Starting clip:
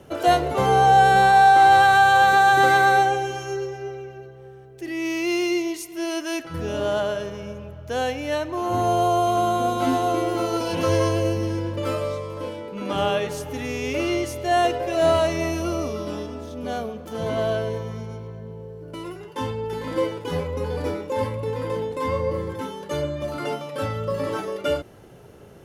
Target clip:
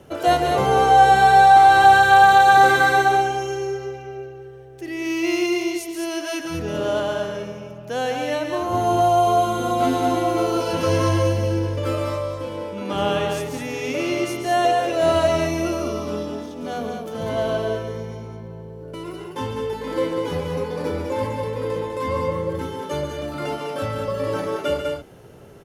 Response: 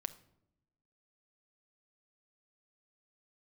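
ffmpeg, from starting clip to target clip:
-af "aecho=1:1:139.9|201.2:0.398|0.562"

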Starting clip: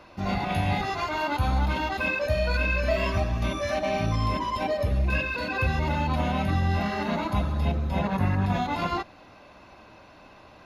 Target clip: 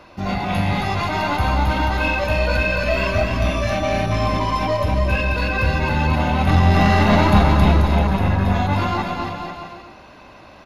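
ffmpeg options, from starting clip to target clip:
ffmpeg -i in.wav -filter_complex "[0:a]asettb=1/sr,asplit=3[link_01][link_02][link_03];[link_01]atrim=end=6.474[link_04];[link_02]atrim=start=6.47:end=7.86,asetpts=PTS-STARTPTS,afade=type=in:duration=0.004:curve=qsin,afade=type=out:start_time=1.386:duration=0.004:curve=qsin,acontrast=80[link_05];[link_03]atrim=start=7.856[link_06];[link_04][link_05]acrossfade=duration=0.004:curve1=hsin:curve2=qsin[link_07];[link_07][link_06]acrossfade=duration=0.004:curve1=qsin:curve2=hsin,aeval=exprs='(tanh(5.01*val(0)+0.3)-tanh(0.3))/5.01':channel_layout=same,aecho=1:1:270|486|658.8|797|907.6:0.631|0.398|0.251|0.158|0.1,volume=5.5dB" out.wav

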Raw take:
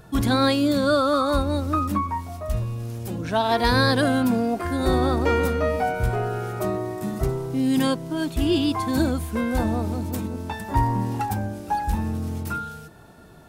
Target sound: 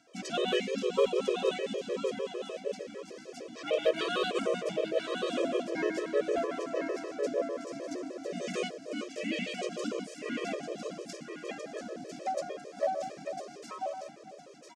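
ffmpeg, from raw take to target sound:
ffmpeg -i in.wav -filter_complex "[0:a]flanger=delay=5.9:depth=2.3:regen=-86:speed=0.83:shape=sinusoidal,asuperstop=centerf=1100:order=20:qfactor=1.9,equalizer=frequency=1200:width_type=o:width=0.21:gain=-10,aecho=1:1:916|1832|2748:0.501|0.115|0.0265,asetrate=40307,aresample=44100,highpass=frequency=390:width=0.5412,highpass=frequency=390:width=1.3066,equalizer=frequency=430:width_type=q:width=4:gain=-4,equalizer=frequency=910:width_type=q:width=4:gain=4,equalizer=frequency=1600:width_type=q:width=4:gain=-9,equalizer=frequency=4200:width_type=q:width=4:gain=-10,equalizer=frequency=6300:width_type=q:width=4:gain=5,lowpass=frequency=7500:width=0.5412,lowpass=frequency=7500:width=1.3066,asplit=3[link_01][link_02][link_03];[link_02]asetrate=33038,aresample=44100,atempo=1.33484,volume=-1dB[link_04];[link_03]asetrate=37084,aresample=44100,atempo=1.18921,volume=-3dB[link_05];[link_01][link_04][link_05]amix=inputs=3:normalize=0,volume=17.5dB,asoftclip=hard,volume=-17.5dB,afftfilt=real='re*gt(sin(2*PI*6.6*pts/sr)*(1-2*mod(floor(b*sr/1024/330),2)),0)':imag='im*gt(sin(2*PI*6.6*pts/sr)*(1-2*mod(floor(b*sr/1024/330),2)),0)':win_size=1024:overlap=0.75" out.wav

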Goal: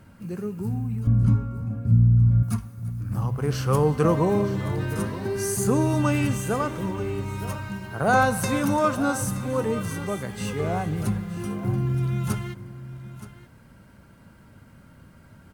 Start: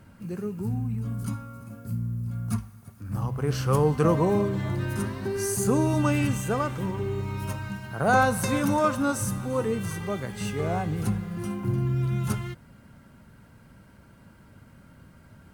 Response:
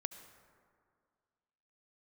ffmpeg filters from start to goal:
-filter_complex "[0:a]asettb=1/sr,asplit=3[link_01][link_02][link_03];[link_01]atrim=end=1.074[link_04];[link_02]atrim=start=1.07:end=2.43,asetpts=PTS-STARTPTS,afade=type=in:duration=0.004:curve=qsin,afade=type=out:start_time=1.356:duration=0.004:curve=qsin,aemphasis=mode=reproduction:type=riaa[link_05];[link_03]atrim=start=2.426[link_06];[link_04][link_05]acrossfade=duration=0.004:curve1=hsin:curve2=qsin[link_07];[link_07][link_06]acrossfade=duration=0.004:curve1=qsin:curve2=hsin,aecho=1:1:923:0.178,asplit=2[link_08][link_09];[1:a]atrim=start_sample=2205[link_10];[link_09][link_10]afir=irnorm=-1:irlink=0,volume=-9dB[link_11];[link_08][link_11]amix=inputs=2:normalize=0,volume=-1dB"

